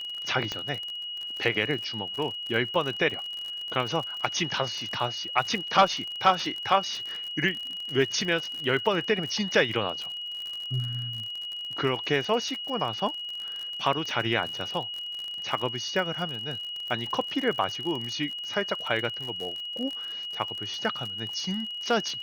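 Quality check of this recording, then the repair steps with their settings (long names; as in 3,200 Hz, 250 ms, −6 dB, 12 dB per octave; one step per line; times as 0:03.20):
surface crackle 45 per second −32 dBFS
whistle 2,900 Hz −33 dBFS
0:00.52: click −17 dBFS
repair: click removal
notch filter 2,900 Hz, Q 30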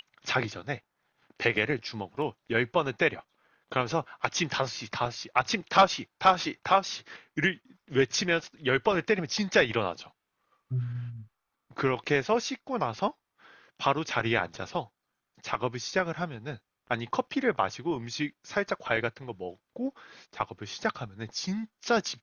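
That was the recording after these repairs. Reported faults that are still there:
none of them is left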